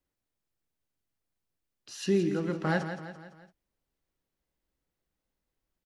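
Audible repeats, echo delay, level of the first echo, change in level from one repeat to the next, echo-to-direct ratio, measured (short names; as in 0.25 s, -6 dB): 4, 0.169 s, -9.5 dB, -6.0 dB, -8.5 dB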